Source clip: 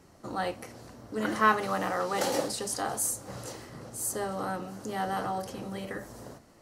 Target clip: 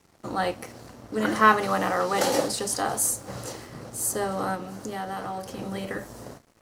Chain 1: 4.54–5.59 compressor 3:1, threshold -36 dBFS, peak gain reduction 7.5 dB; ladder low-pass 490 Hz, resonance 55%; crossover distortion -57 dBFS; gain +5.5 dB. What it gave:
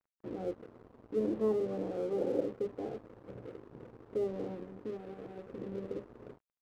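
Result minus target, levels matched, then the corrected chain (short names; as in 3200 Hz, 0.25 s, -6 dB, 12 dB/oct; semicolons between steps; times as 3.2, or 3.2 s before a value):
500 Hz band +5.5 dB
4.54–5.59 compressor 3:1, threshold -36 dBFS, peak gain reduction 7.5 dB; crossover distortion -57 dBFS; gain +5.5 dB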